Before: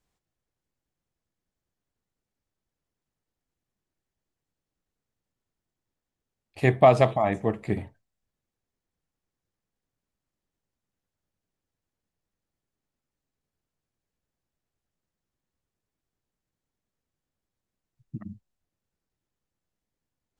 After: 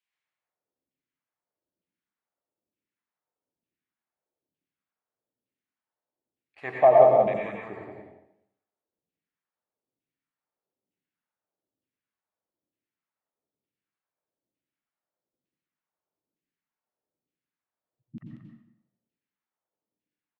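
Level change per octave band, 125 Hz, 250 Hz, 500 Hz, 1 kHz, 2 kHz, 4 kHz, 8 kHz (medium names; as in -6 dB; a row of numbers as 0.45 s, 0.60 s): -14.0 dB, -8.5 dB, +3.0 dB, +1.5 dB, -4.5 dB, under -10 dB, no reading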